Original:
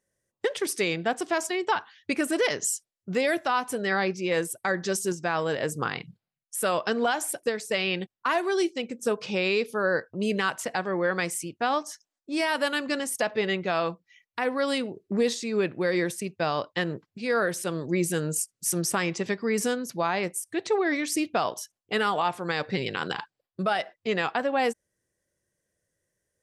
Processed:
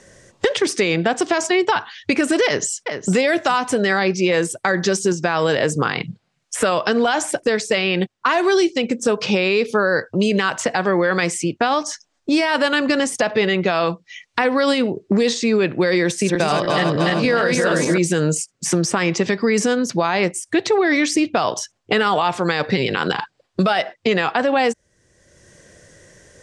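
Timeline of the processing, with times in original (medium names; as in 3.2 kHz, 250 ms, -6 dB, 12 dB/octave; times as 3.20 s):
2.45–3.13 s: echo throw 410 ms, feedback 35%, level -16.5 dB
16.05–17.98 s: backward echo that repeats 150 ms, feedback 68%, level -2 dB
whole clip: low-pass 7.7 kHz 24 dB/octave; loudness maximiser +20 dB; three bands compressed up and down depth 70%; trim -8 dB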